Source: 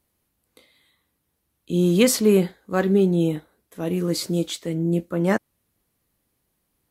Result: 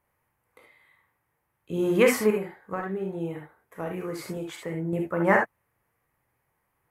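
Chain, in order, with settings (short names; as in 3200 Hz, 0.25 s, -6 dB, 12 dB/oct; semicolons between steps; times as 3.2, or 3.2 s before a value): graphic EQ 125/250/500/1000/2000/4000/8000 Hz +6/-5/+5/+11/+11/-10/-3 dB; 2.3–4.93 compressor 10:1, threshold -22 dBFS, peak gain reduction 14.5 dB; reverb, pre-delay 3 ms, DRR 2 dB; gain -7.5 dB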